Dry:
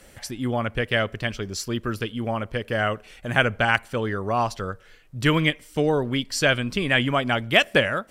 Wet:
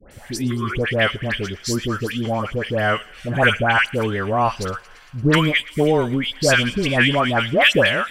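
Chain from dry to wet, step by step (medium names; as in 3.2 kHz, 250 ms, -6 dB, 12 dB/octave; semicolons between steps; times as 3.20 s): spectral replace 0.36–0.74 s, 360–1000 Hz before; phase dispersion highs, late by 113 ms, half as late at 1.4 kHz; on a send: feedback echo behind a high-pass 114 ms, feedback 80%, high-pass 1.9 kHz, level -19 dB; on the sum: trim +4.5 dB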